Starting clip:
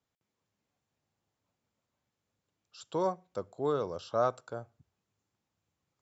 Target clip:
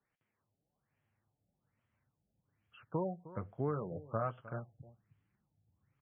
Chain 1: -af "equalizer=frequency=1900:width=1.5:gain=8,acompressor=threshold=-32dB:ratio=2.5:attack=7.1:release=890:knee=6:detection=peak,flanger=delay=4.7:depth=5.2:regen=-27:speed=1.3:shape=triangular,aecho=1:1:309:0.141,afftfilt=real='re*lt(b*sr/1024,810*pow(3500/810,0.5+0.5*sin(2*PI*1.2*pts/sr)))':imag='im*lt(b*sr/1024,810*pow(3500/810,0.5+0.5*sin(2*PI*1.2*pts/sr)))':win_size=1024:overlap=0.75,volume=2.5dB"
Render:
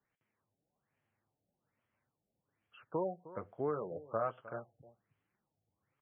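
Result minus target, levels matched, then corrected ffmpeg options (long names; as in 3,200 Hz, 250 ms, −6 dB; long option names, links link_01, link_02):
250 Hz band −3.0 dB
-af "equalizer=frequency=1900:width=1.5:gain=8,acompressor=threshold=-32dB:ratio=2.5:attack=7.1:release=890:knee=6:detection=peak,asubboost=boost=4.5:cutoff=210,flanger=delay=4.7:depth=5.2:regen=-27:speed=1.3:shape=triangular,aecho=1:1:309:0.141,afftfilt=real='re*lt(b*sr/1024,810*pow(3500/810,0.5+0.5*sin(2*PI*1.2*pts/sr)))':imag='im*lt(b*sr/1024,810*pow(3500/810,0.5+0.5*sin(2*PI*1.2*pts/sr)))':win_size=1024:overlap=0.75,volume=2.5dB"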